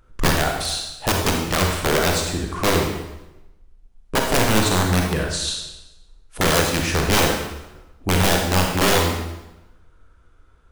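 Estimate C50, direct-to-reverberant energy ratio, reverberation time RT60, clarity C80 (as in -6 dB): 2.5 dB, 1.0 dB, 1.0 s, 5.5 dB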